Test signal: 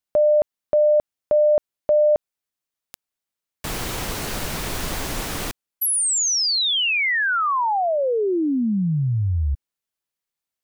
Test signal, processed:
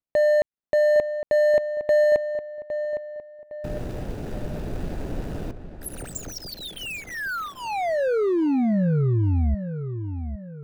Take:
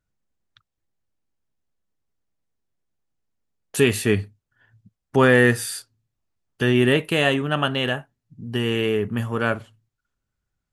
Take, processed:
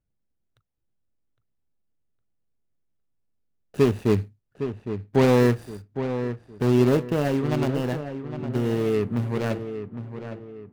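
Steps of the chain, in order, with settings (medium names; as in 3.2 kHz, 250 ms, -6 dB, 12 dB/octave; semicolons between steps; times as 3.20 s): median filter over 41 samples; filtered feedback delay 810 ms, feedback 40%, low-pass 2.5 kHz, level -9.5 dB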